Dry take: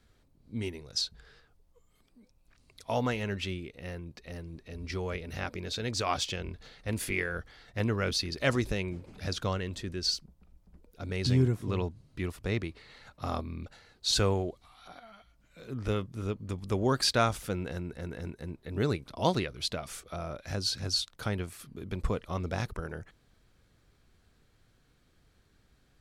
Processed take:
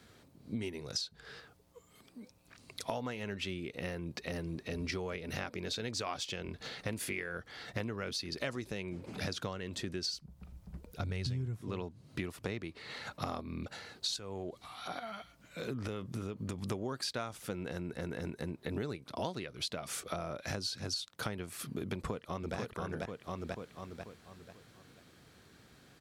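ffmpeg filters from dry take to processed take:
ffmpeg -i in.wav -filter_complex "[0:a]asplit=3[link_01][link_02][link_03];[link_01]afade=type=out:start_time=10.09:duration=0.02[link_04];[link_02]asubboost=boost=5:cutoff=120,afade=type=in:start_time=10.09:duration=0.02,afade=type=out:start_time=11.61:duration=0.02[link_05];[link_03]afade=type=in:start_time=11.61:duration=0.02[link_06];[link_04][link_05][link_06]amix=inputs=3:normalize=0,asettb=1/sr,asplit=3[link_07][link_08][link_09];[link_07]atrim=end=14.164[link_10];[link_08]atrim=start=14.16:end=16.71,asetpts=PTS-STARTPTS,afade=type=in:duration=0.004:curve=qsin,afade=type=out:start_time=2.546:duration=0.004:curve=qsin,acompressor=threshold=-37dB:ratio=4:attack=3.2:release=140:knee=1:detection=peak[link_11];[link_09]atrim=start=16.706[link_12];[link_10][link_11]acrossfade=duration=0.004:curve1=hsin:curve2=qsin[link_13];[link_13][link_12]acrossfade=duration=0.004:curve1=qsin:curve2=hsin,asplit=2[link_14][link_15];[link_15]afade=type=in:start_time=21.94:duration=0.01,afade=type=out:start_time=22.56:duration=0.01,aecho=0:1:490|980|1470|1960|2450:0.794328|0.278015|0.0973052|0.0340568|0.0119199[link_16];[link_14][link_16]amix=inputs=2:normalize=0,highpass=120,acompressor=threshold=-44dB:ratio=12,volume=9.5dB" out.wav

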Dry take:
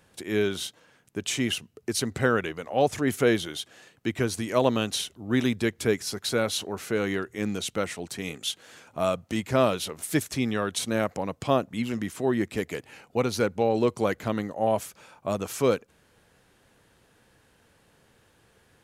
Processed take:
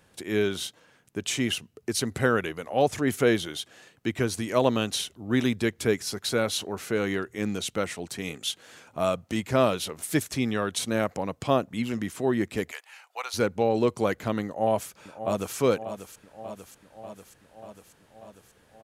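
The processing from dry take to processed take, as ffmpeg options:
ffmpeg -i in.wav -filter_complex "[0:a]asettb=1/sr,asplit=3[link_01][link_02][link_03];[link_01]atrim=end=2.074[link_04];[link_02]atrim=start=2.07:end=2.83,asetpts=PTS-STARTPTS,afade=type=in:duration=0.004:curve=qsin,afade=type=out:start_time=0.756:duration=0.004:curve=qsin,equalizer=frequency=11000:width_type=o:width=0.24:gain=12.5[link_05];[link_03]atrim=start=2.826[link_06];[link_04][link_05]acrossfade=duration=0.004:curve1=hsin:curve2=qsin[link_07];[link_07][link_06]acrossfade=duration=0.004:curve1=qsin:curve2=hsin,asettb=1/sr,asplit=3[link_08][link_09][link_10];[link_08]atrim=end=12.714[link_11];[link_09]atrim=start=12.71:end=13.34,asetpts=PTS-STARTPTS,afade=type=in:duration=0.004:curve=qsin,afade=type=out:start_time=0.626:duration=0.004:curve=qsin,highpass=frequency=810:width=0.5412,highpass=frequency=810:width=1.3066[link_12];[link_10]atrim=start=13.336[link_13];[link_11][link_12]acrossfade=duration=0.004:curve1=hsin:curve2=qsin[link_14];[link_14][link_13]acrossfade=duration=0.004:curve1=qsin:curve2=hsin,asplit=2[link_15][link_16];[link_16]afade=type=in:start_time=14.46:duration=0.01,afade=type=out:start_time=15.56:duration=0.01,aecho=0:1:590|1180|1770|2360|2950|3540|4130|4720|5310|5900:0.281838|0.197287|0.138101|0.0966705|0.0676694|0.0473686|0.033158|0.0232106|0.0162474|0.0113732[link_17];[link_15][link_17]amix=inputs=2:normalize=0" out.wav

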